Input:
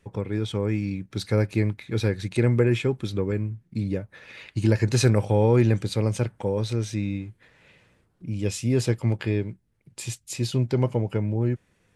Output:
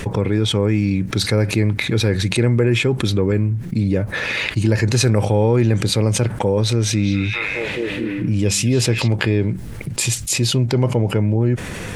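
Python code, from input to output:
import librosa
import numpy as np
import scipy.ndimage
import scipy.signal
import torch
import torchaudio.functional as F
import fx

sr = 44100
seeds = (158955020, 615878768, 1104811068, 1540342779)

y = fx.echo_stepped(x, sr, ms=210, hz=3100.0, octaves=-0.7, feedback_pct=70, wet_db=0, at=(6.7, 9.08))
y = fx.env_flatten(y, sr, amount_pct=70)
y = F.gain(torch.from_numpy(y), 1.5).numpy()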